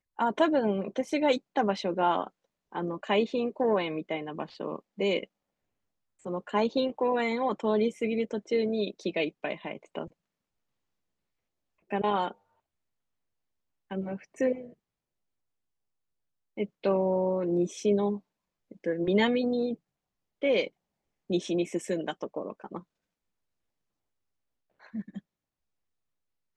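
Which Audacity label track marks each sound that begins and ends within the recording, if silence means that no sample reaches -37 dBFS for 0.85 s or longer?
6.260000	10.060000	sound
11.910000	12.310000	sound
13.910000	14.650000	sound
16.580000	22.790000	sound
24.950000	25.190000	sound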